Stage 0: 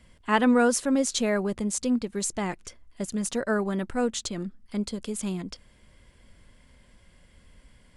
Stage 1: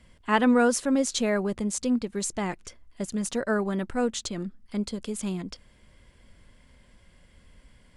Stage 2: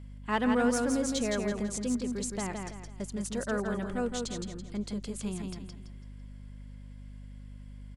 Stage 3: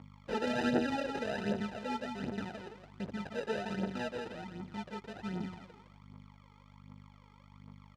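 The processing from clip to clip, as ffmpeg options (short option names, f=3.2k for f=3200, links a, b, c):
-af "highshelf=f=10k:g=-4.5"
-filter_complex "[0:a]aecho=1:1:166|332|498|664|830:0.596|0.214|0.0772|0.0278|0.01,asplit=2[a][b];[b]asoftclip=type=hard:threshold=-19.5dB,volume=-8dB[c];[a][c]amix=inputs=2:normalize=0,aeval=exprs='val(0)+0.0178*(sin(2*PI*50*n/s)+sin(2*PI*2*50*n/s)/2+sin(2*PI*3*50*n/s)/3+sin(2*PI*4*50*n/s)/4+sin(2*PI*5*50*n/s)/5)':c=same,volume=-9dB"
-af "acrusher=samples=40:mix=1:aa=0.000001,aphaser=in_gain=1:out_gain=1:delay=2.5:decay=0.62:speed=1.3:type=triangular,highpass=140,lowpass=3.9k,volume=-5.5dB"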